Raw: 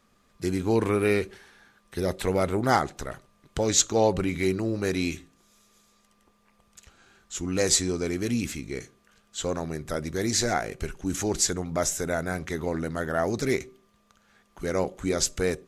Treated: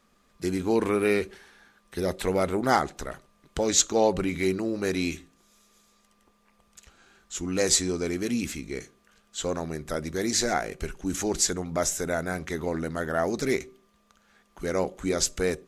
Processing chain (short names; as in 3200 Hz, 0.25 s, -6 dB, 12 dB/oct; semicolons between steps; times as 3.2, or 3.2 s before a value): bell 110 Hz -13 dB 0.34 oct